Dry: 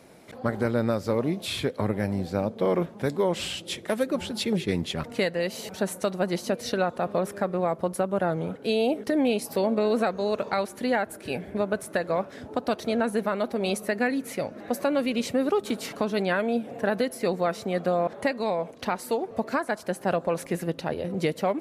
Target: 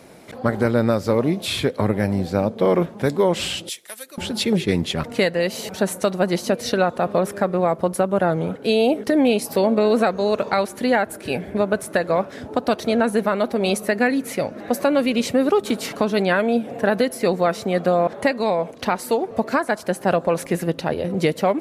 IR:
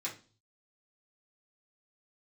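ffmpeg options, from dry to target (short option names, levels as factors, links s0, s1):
-filter_complex "[0:a]asettb=1/sr,asplit=3[s0][s1][s2];[s0]atrim=end=3.694[s3];[s1]atrim=start=3.69:end=4.18,asetpts=PTS-STARTPTS,afade=t=in:d=0.004:c=qsin,afade=t=out:st=0.486:d=0.004:c=qsin,aderivative[s4];[s2]atrim=start=4.176[s5];[s3][s4]acrossfade=d=0.004:c1=hsin:c2=qsin[s6];[s6][s5]acrossfade=d=0.004:c1=qsin:c2=hsin,volume=2.11"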